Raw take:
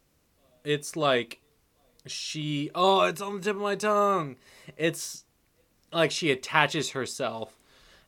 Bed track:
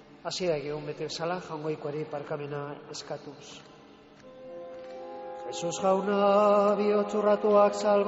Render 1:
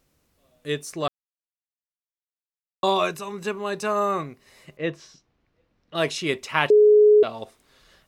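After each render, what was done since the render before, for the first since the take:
0:01.08–0:02.83: silence
0:04.77–0:05.95: high-frequency loss of the air 220 metres
0:06.70–0:07.23: beep over 421 Hz −10.5 dBFS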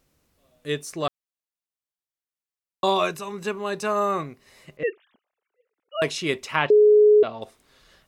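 0:04.83–0:06.02: three sine waves on the formant tracks
0:06.56–0:07.42: high-frequency loss of the air 150 metres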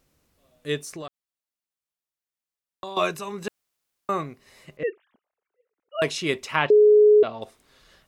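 0:00.79–0:02.97: downward compressor, threshold −33 dBFS
0:03.48–0:04.09: fill with room tone
0:04.83–0:05.99: high-frequency loss of the air 440 metres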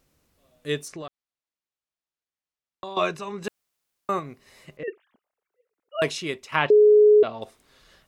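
0:00.88–0:03.44: high-frequency loss of the air 70 metres
0:04.19–0:04.88: downward compressor 2.5 to 1, threshold −33 dBFS
0:06.09–0:06.52: fade out quadratic, to −8 dB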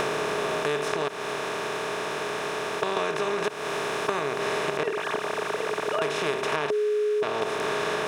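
compressor on every frequency bin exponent 0.2
downward compressor, threshold −24 dBFS, peak gain reduction 12 dB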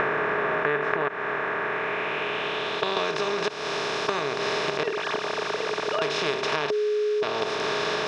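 low-pass filter sweep 1,800 Hz → 4,900 Hz, 0:01.62–0:03.14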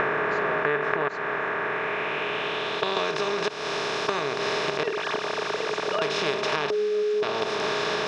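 mix in bed track −17 dB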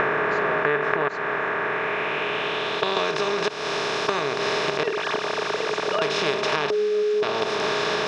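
level +2.5 dB

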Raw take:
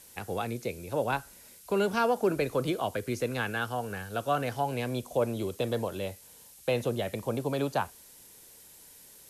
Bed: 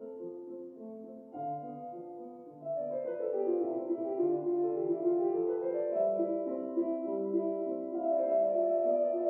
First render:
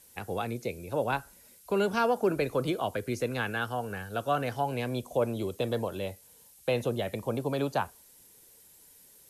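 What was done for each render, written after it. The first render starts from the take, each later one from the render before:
broadband denoise 6 dB, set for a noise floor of −54 dBFS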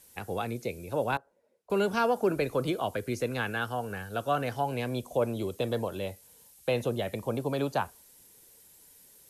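0:01.17–0:01.70: resonant band-pass 520 Hz, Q 2.5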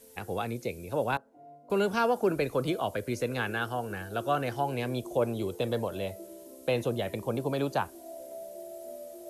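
mix in bed −14 dB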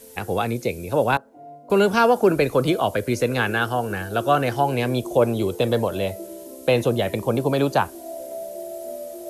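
level +9.5 dB

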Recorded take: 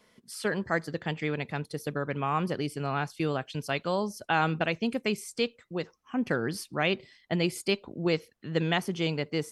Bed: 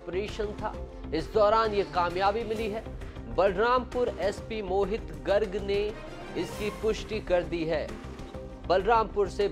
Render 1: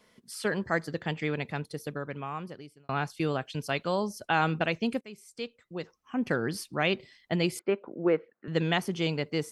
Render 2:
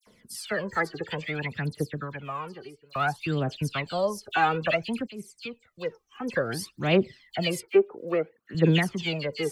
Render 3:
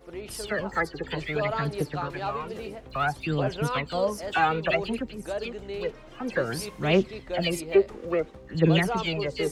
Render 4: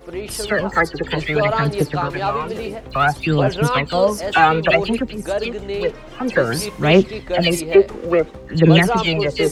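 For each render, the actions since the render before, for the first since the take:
0:01.46–0:02.89: fade out; 0:05.01–0:06.29: fade in, from −21.5 dB; 0:07.59–0:08.48: loudspeaker in its box 230–2,000 Hz, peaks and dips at 350 Hz +3 dB, 520 Hz +4 dB, 1,400 Hz +5 dB
phase shifter 0.58 Hz, delay 2.7 ms, feedback 67%; all-pass dispersion lows, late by 68 ms, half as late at 2,800 Hz
mix in bed −7 dB
level +10 dB; brickwall limiter −1 dBFS, peak gain reduction 3 dB

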